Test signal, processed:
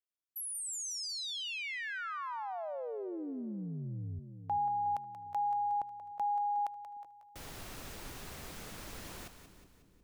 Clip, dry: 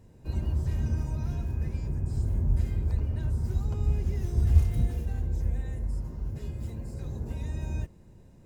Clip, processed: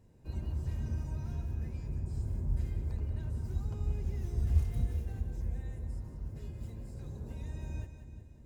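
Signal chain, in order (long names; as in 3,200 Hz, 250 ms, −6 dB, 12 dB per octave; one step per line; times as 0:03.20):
echo with a time of its own for lows and highs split 430 Hz, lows 384 ms, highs 182 ms, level −10 dB
level −7.5 dB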